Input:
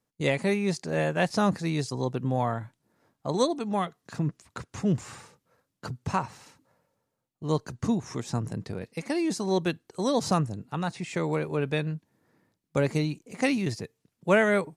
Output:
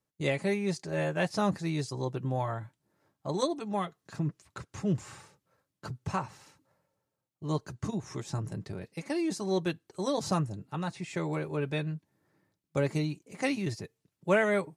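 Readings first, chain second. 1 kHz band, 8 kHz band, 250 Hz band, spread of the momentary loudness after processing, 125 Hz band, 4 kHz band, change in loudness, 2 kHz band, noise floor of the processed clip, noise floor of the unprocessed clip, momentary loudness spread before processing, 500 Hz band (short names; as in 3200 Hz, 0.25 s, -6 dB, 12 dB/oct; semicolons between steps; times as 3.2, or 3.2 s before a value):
-4.5 dB, -4.0 dB, -4.5 dB, 12 LU, -3.0 dB, -4.5 dB, -4.0 dB, -4.0 dB, -85 dBFS, -81 dBFS, 13 LU, -4.0 dB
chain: notch comb 240 Hz; gain -3 dB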